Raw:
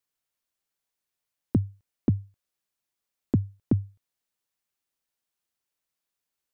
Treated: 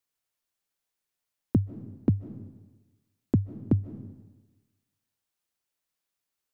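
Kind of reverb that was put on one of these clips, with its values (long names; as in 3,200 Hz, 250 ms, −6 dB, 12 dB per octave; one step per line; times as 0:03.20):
comb and all-pass reverb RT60 1.2 s, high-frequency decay 0.95×, pre-delay 110 ms, DRR 13 dB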